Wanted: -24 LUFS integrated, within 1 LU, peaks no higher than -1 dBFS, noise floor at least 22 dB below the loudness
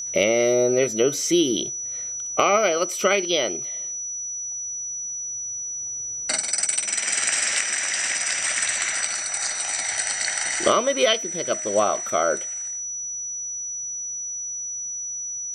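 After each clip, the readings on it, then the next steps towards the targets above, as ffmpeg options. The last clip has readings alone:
steady tone 5900 Hz; tone level -28 dBFS; loudness -23.0 LUFS; peak -3.0 dBFS; loudness target -24.0 LUFS
-> -af "bandreject=f=5.9k:w=30"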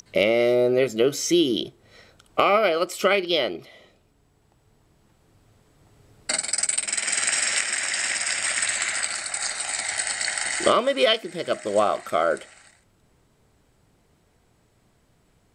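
steady tone none; loudness -22.5 LUFS; peak -3.5 dBFS; loudness target -24.0 LUFS
-> -af "volume=-1.5dB"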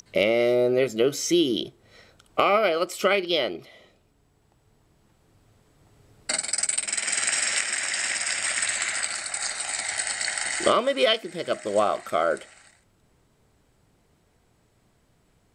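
loudness -24.0 LUFS; peak -5.0 dBFS; noise floor -65 dBFS

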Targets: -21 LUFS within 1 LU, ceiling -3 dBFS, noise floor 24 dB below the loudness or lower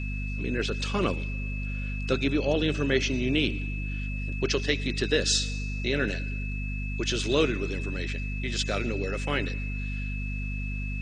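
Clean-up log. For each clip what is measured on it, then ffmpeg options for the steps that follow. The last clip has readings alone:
hum 50 Hz; harmonics up to 250 Hz; hum level -30 dBFS; steady tone 2600 Hz; tone level -38 dBFS; loudness -29.0 LUFS; peak -9.5 dBFS; loudness target -21.0 LUFS
-> -af "bandreject=f=50:t=h:w=6,bandreject=f=100:t=h:w=6,bandreject=f=150:t=h:w=6,bandreject=f=200:t=h:w=6,bandreject=f=250:t=h:w=6"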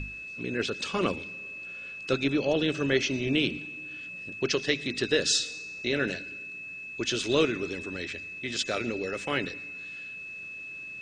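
hum none; steady tone 2600 Hz; tone level -38 dBFS
-> -af "bandreject=f=2.6k:w=30"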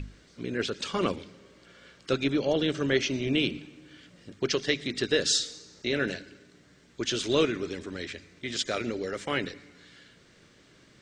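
steady tone none; loudness -29.5 LUFS; peak -10.5 dBFS; loudness target -21.0 LUFS
-> -af "volume=8.5dB,alimiter=limit=-3dB:level=0:latency=1"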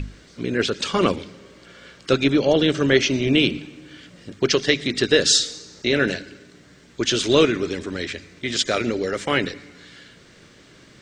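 loudness -21.0 LUFS; peak -3.0 dBFS; noise floor -50 dBFS

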